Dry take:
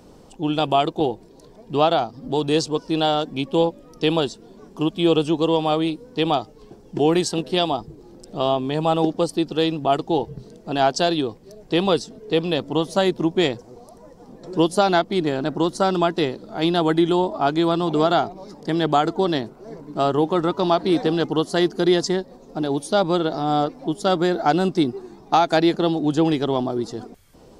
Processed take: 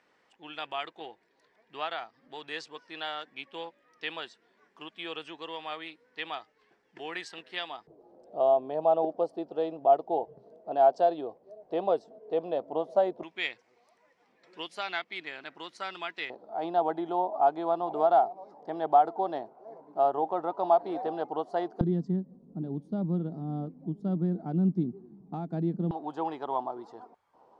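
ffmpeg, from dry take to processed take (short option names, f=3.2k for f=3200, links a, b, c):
-af "asetnsamples=n=441:p=0,asendcmd='7.87 bandpass f 650;13.23 bandpass f 2200;16.3 bandpass f 750;21.81 bandpass f 180;25.91 bandpass f 910',bandpass=f=1.9k:t=q:w=3.6:csg=0"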